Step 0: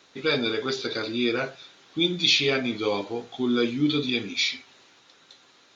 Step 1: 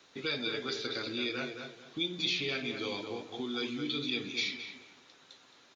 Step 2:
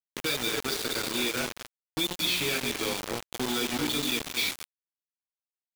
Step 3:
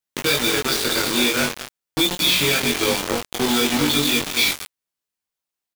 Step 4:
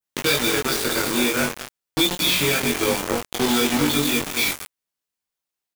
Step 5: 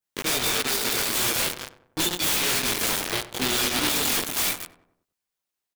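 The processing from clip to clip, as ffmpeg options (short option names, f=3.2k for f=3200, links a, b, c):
-filter_complex "[0:a]acrossover=split=320|1800|4700[a][b][c][d];[a]acompressor=threshold=-40dB:ratio=4[e];[b]acompressor=threshold=-37dB:ratio=4[f];[c]acompressor=threshold=-30dB:ratio=4[g];[d]acompressor=threshold=-41dB:ratio=4[h];[e][f][g][h]amix=inputs=4:normalize=0,asplit=2[i][j];[j]adelay=218,lowpass=f=1.9k:p=1,volume=-5.5dB,asplit=2[k][l];[l]adelay=218,lowpass=f=1.9k:p=1,volume=0.3,asplit=2[m][n];[n]adelay=218,lowpass=f=1.9k:p=1,volume=0.3,asplit=2[o][p];[p]adelay=218,lowpass=f=1.9k:p=1,volume=0.3[q];[k][m][o][q]amix=inputs=4:normalize=0[r];[i][r]amix=inputs=2:normalize=0,volume=-4dB"
-filter_complex "[0:a]asplit=2[a][b];[b]alimiter=level_in=1.5dB:limit=-24dB:level=0:latency=1:release=81,volume=-1.5dB,volume=-2dB[c];[a][c]amix=inputs=2:normalize=0,acrusher=bits=4:mix=0:aa=0.000001"
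-filter_complex "[0:a]asplit=2[a][b];[b]adelay=21,volume=-3dB[c];[a][c]amix=inputs=2:normalize=0,volume=8dB"
-af "adynamicequalizer=threshold=0.02:dfrequency=3900:dqfactor=1.1:tfrequency=3900:tqfactor=1.1:attack=5:release=100:ratio=0.375:range=3.5:mode=cutabove:tftype=bell"
-filter_complex "[0:a]aeval=exprs='(mod(8.41*val(0)+1,2)-1)/8.41':c=same,asplit=2[a][b];[b]adelay=95,lowpass=f=1.5k:p=1,volume=-13dB,asplit=2[c][d];[d]adelay=95,lowpass=f=1.5k:p=1,volume=0.49,asplit=2[e][f];[f]adelay=95,lowpass=f=1.5k:p=1,volume=0.49,asplit=2[g][h];[h]adelay=95,lowpass=f=1.5k:p=1,volume=0.49,asplit=2[i][j];[j]adelay=95,lowpass=f=1.5k:p=1,volume=0.49[k];[a][c][e][g][i][k]amix=inputs=6:normalize=0"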